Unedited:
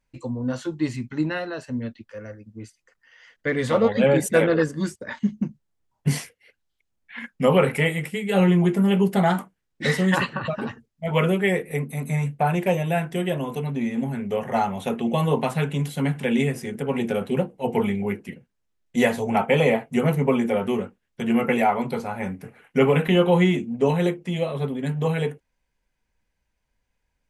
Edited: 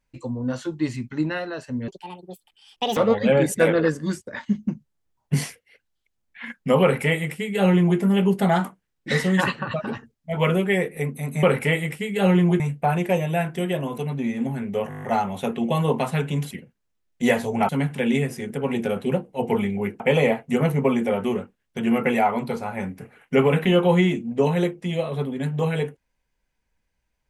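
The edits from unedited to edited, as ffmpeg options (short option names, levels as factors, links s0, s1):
-filter_complex "[0:a]asplit=15[s0][s1][s2][s3][s4][s5][s6][s7][s8][s9][s10][s11][s12][s13][s14];[s0]atrim=end=1.884[s15];[s1]atrim=start=1.88:end=3.71,asetpts=PTS-STARTPTS,asetrate=74088,aresample=44100[s16];[s2]atrim=start=3.706:end=12.172[s17];[s3]atrim=start=7.558:end=8.732[s18];[s4]atrim=start=12.168:end=14.482[s19];[s5]atrim=start=14.458:end=14.482[s20];[s6]atrim=start=14.458:end=14.482[s21];[s7]atrim=start=14.458:end=14.482[s22];[s8]atrim=start=14.458:end=14.482[s23];[s9]atrim=start=14.458:end=14.482[s24];[s10]atrim=start=14.458:end=14.482[s25];[s11]atrim=start=14.458:end=15.942[s26];[s12]atrim=start=18.248:end=19.432[s27];[s13]atrim=start=15.938:end=18.252[s28];[s14]atrim=start=19.428[s29];[s15][s16]acrossfade=d=0.004:c1=hsin:c2=hsin[s30];[s30][s17]acrossfade=d=0.004:c1=hsin:c2=hsin[s31];[s31][s18]acrossfade=d=0.004:c1=hsin:c2=hsin[s32];[s32][s19]acrossfade=d=0.004:c1=hsin:c2=hsin[s33];[s33][s20]acrossfade=d=0.004:c1=hsin:c2=hsin[s34];[s34][s21]acrossfade=d=0.004:c1=hsin:c2=hsin[s35];[s35][s22]acrossfade=d=0.004:c1=hsin:c2=hsin[s36];[s36][s23]acrossfade=d=0.004:c1=hsin:c2=hsin[s37];[s37][s24]acrossfade=d=0.004:c1=hsin:c2=hsin[s38];[s38][s25]acrossfade=d=0.004:c1=hsin:c2=hsin[s39];[s39][s26]acrossfade=d=0.004:c1=hsin:c2=hsin[s40];[s40][s27]acrossfade=d=0.004:c1=hsin:c2=hsin[s41];[s41][s28]acrossfade=d=0.004:c1=hsin:c2=hsin[s42];[s42][s29]acrossfade=d=0.004:c1=hsin:c2=hsin"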